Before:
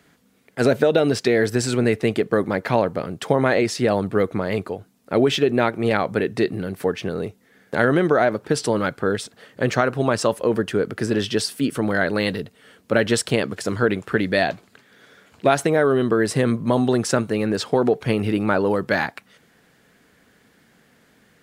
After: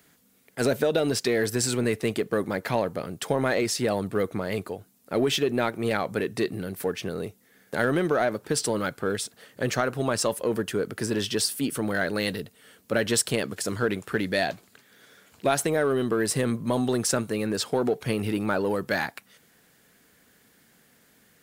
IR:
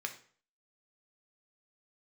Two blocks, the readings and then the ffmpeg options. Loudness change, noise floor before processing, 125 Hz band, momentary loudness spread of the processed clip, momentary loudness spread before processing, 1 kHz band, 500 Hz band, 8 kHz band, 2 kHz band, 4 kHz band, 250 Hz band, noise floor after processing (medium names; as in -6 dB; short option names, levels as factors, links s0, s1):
-5.5 dB, -58 dBFS, -6.5 dB, 7 LU, 8 LU, -6.0 dB, -6.0 dB, +2.0 dB, -5.5 dB, -2.0 dB, -6.0 dB, -61 dBFS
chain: -filter_complex "[0:a]aemphasis=mode=production:type=50kf,asplit=2[s0][s1];[s1]volume=7.94,asoftclip=hard,volume=0.126,volume=0.335[s2];[s0][s2]amix=inputs=2:normalize=0,volume=0.398"